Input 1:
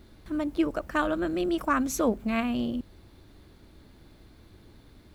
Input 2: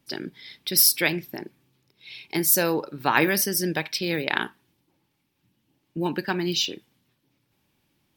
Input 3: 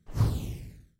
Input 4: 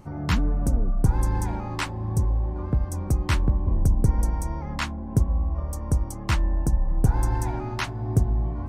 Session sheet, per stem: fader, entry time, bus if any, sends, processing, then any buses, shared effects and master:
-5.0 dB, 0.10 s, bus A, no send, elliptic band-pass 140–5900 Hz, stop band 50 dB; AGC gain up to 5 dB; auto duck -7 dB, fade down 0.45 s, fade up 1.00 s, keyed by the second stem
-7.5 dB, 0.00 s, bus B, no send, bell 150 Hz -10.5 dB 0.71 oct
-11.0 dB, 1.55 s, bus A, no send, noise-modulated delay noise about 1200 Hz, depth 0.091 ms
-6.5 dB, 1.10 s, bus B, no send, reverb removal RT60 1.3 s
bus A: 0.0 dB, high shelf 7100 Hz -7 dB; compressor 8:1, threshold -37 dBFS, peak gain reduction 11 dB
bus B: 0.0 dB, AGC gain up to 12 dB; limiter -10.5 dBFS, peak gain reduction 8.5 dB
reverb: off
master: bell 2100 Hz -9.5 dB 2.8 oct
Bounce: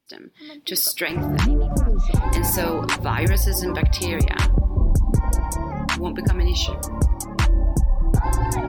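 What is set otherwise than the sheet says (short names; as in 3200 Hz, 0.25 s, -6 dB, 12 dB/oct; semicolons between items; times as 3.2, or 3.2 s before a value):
stem 4 -6.5 dB -> +2.5 dB; master: missing bell 2100 Hz -9.5 dB 2.8 oct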